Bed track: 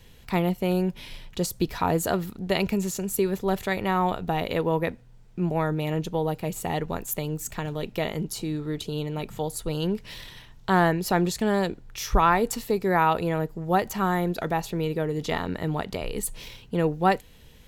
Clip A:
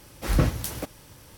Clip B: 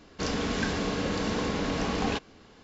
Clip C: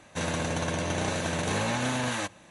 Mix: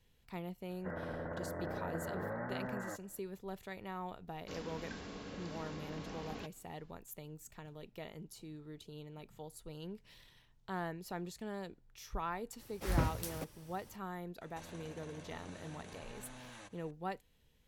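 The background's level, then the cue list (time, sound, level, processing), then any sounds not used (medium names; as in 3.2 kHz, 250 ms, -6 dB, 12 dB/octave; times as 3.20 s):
bed track -19.5 dB
0.69 s: add C -8.5 dB + rippled Chebyshev low-pass 2 kHz, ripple 6 dB
4.28 s: add B -17.5 dB
12.59 s: add A -10.5 dB
14.41 s: add C -11.5 dB + compression, threshold -38 dBFS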